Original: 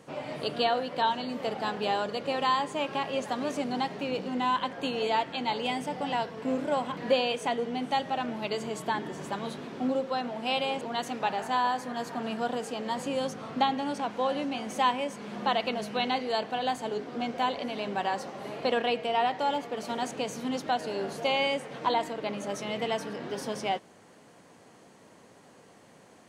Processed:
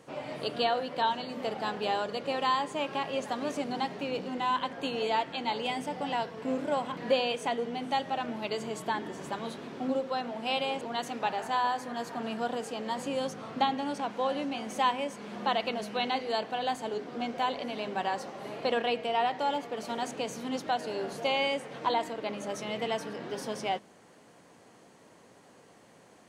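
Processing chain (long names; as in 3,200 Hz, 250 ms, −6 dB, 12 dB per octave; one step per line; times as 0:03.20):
mains-hum notches 50/100/150/200/250 Hz
level −1.5 dB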